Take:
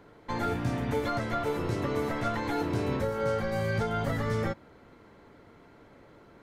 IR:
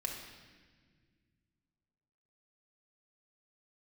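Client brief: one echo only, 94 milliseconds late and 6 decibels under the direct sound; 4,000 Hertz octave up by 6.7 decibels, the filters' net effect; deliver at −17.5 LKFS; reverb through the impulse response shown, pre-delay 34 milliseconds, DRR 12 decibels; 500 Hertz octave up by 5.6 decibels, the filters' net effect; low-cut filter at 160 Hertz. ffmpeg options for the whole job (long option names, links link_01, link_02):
-filter_complex "[0:a]highpass=160,equalizer=frequency=500:width_type=o:gain=6.5,equalizer=frequency=4000:width_type=o:gain=8,aecho=1:1:94:0.501,asplit=2[link_01][link_02];[1:a]atrim=start_sample=2205,adelay=34[link_03];[link_02][link_03]afir=irnorm=-1:irlink=0,volume=-13.5dB[link_04];[link_01][link_04]amix=inputs=2:normalize=0,volume=9dB"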